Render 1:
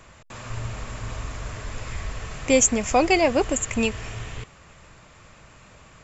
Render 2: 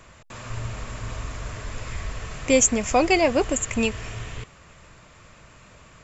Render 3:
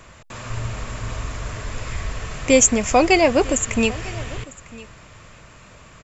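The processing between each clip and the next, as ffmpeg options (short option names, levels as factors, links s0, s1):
-af "bandreject=f=810:w=17"
-af "aecho=1:1:951:0.0944,volume=1.58"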